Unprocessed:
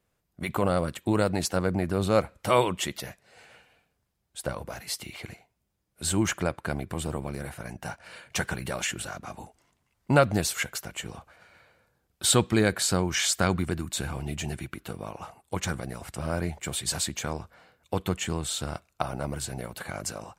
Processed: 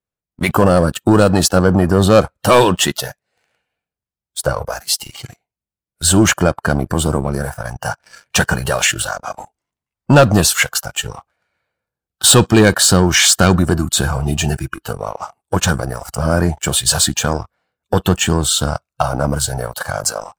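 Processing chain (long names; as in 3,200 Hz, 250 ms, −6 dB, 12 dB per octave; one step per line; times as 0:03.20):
leveller curve on the samples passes 3
noise reduction from a noise print of the clip's start 13 dB
level +4.5 dB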